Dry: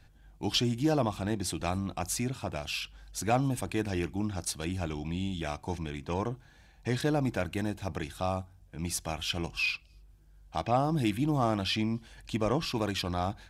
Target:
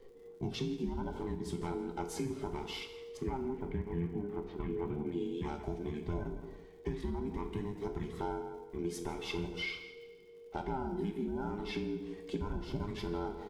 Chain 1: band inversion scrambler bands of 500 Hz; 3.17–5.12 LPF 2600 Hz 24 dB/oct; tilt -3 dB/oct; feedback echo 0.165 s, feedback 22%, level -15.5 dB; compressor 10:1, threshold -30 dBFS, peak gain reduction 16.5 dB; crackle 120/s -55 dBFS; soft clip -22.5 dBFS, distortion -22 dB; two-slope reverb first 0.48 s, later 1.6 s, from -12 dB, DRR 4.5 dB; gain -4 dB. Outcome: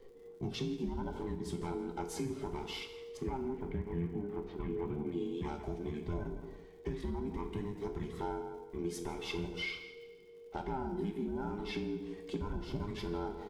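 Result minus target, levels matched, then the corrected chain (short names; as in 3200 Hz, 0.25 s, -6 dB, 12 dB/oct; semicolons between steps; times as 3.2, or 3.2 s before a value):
soft clip: distortion +19 dB
band inversion scrambler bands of 500 Hz; 3.17–5.12 LPF 2600 Hz 24 dB/oct; tilt -3 dB/oct; feedback echo 0.165 s, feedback 22%, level -15.5 dB; compressor 10:1, threshold -30 dBFS, peak gain reduction 16.5 dB; crackle 120/s -55 dBFS; soft clip -11.5 dBFS, distortion -41 dB; two-slope reverb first 0.48 s, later 1.6 s, from -12 dB, DRR 4.5 dB; gain -4 dB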